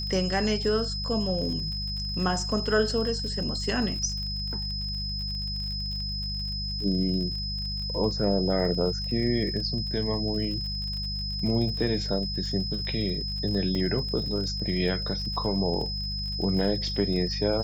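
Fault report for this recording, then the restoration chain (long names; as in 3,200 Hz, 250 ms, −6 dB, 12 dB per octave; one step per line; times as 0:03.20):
surface crackle 52 per second −35 dBFS
mains hum 50 Hz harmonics 4 −34 dBFS
whistle 5,100 Hz −32 dBFS
0:13.75: drop-out 2.4 ms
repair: click removal
hum removal 50 Hz, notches 4
notch filter 5,100 Hz, Q 30
repair the gap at 0:13.75, 2.4 ms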